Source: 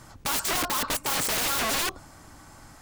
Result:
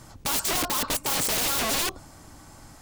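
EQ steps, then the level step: bell 1500 Hz -4.5 dB 1.5 oct; +2.0 dB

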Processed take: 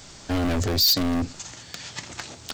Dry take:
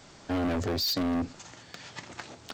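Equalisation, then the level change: low shelf 99 Hz +11.5 dB; high shelf 3300 Hz +12 dB; +2.0 dB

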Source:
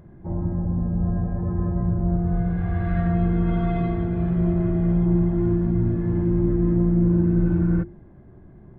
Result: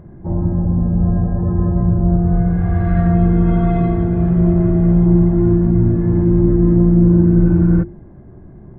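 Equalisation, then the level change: high shelf 2300 Hz -11.5 dB; +8.0 dB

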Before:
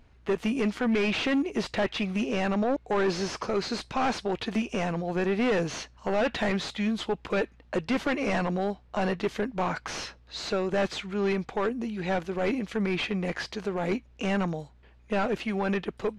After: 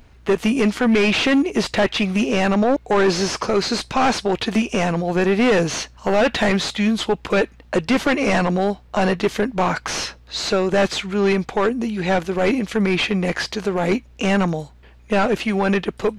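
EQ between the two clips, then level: high shelf 6900 Hz +8 dB; +9.0 dB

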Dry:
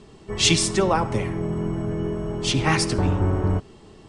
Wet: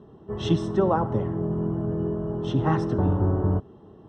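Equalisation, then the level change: running mean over 19 samples; HPF 71 Hz; air absorption 74 m; 0.0 dB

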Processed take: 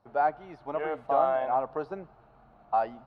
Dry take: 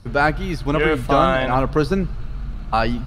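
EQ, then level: band-pass 740 Hz, Q 3.1; -3.5 dB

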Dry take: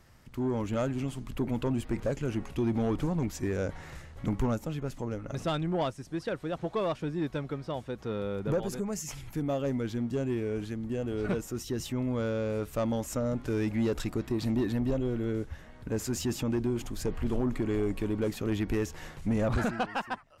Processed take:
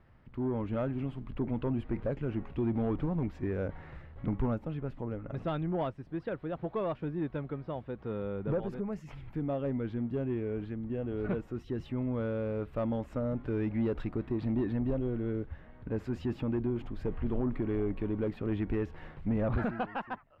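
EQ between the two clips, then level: air absorption 460 m; -1.5 dB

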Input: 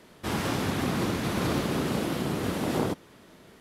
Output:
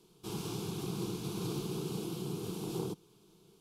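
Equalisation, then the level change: band shelf 980 Hz -8 dB; fixed phaser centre 380 Hz, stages 8; -6.0 dB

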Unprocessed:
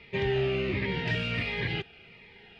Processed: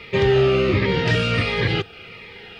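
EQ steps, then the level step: high shelf 4000 Hz +11 dB; dynamic EQ 2400 Hz, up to -5 dB, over -43 dBFS, Q 1; thirty-one-band EQ 100 Hz +6 dB, 315 Hz +4 dB, 500 Hz +8 dB, 1250 Hz +11 dB; +9.0 dB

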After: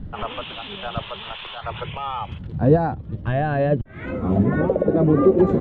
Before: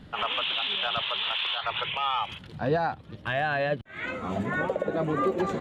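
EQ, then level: tilt -4.5 dB/oct; dynamic EQ 370 Hz, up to +6 dB, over -33 dBFS, Q 0.95; 0.0 dB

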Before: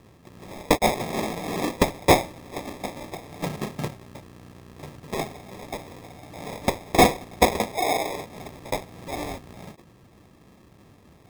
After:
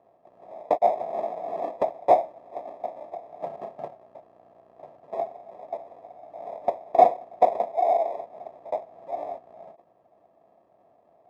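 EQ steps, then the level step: band-pass 670 Hz, Q 7.7; +8.0 dB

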